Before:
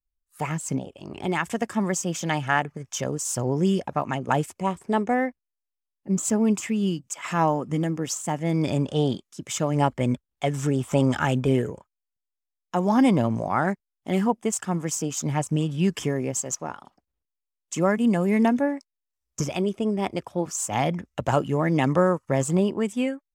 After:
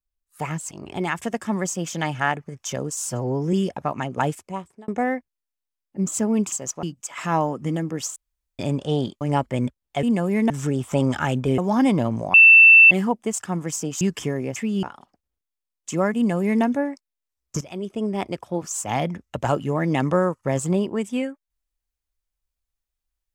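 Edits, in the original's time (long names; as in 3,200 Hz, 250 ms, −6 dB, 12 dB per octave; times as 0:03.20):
0:00.71–0:00.99: remove
0:03.30–0:03.64: time-stretch 1.5×
0:04.39–0:04.99: fade out
0:06.63–0:06.90: swap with 0:16.36–0:16.67
0:08.23–0:08.66: fill with room tone
0:09.28–0:09.68: remove
0:11.58–0:12.77: remove
0:13.53–0:14.10: beep over 2,670 Hz −6.5 dBFS
0:15.20–0:15.81: remove
0:18.00–0:18.47: duplicate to 0:10.50
0:19.45–0:19.91: fade in, from −15 dB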